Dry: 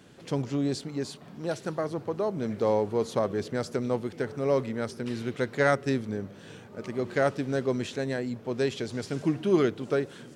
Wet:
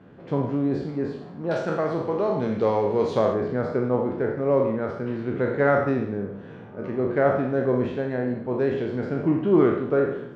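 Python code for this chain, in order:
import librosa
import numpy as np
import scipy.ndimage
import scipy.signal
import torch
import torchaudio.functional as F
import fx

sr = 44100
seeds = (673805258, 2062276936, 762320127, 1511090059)

y = fx.spec_trails(x, sr, decay_s=0.71)
y = fx.lowpass(y, sr, hz=fx.steps((0.0, 1400.0), (1.51, 3300.0), (3.34, 1400.0)), slope=12)
y = fx.rev_schroeder(y, sr, rt60_s=0.46, comb_ms=32, drr_db=7.5)
y = y * 10.0 ** (3.0 / 20.0)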